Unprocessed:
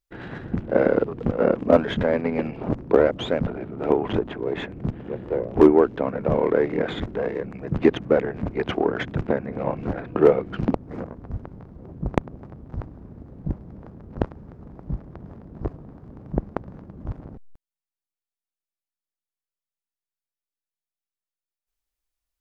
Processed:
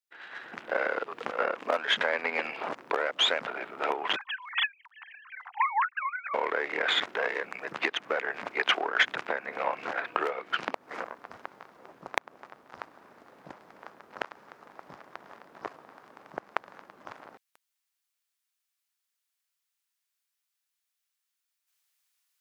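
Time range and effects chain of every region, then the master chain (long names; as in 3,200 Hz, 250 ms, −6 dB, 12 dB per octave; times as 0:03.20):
0:04.16–0:06.34: three sine waves on the formant tracks + Butterworth high-pass 730 Hz 96 dB per octave + high-shelf EQ 2,300 Hz +9 dB
whole clip: downward compressor 6 to 1, threshold −22 dBFS; high-pass filter 1,300 Hz 12 dB per octave; automatic gain control gain up to 16 dB; level −4.5 dB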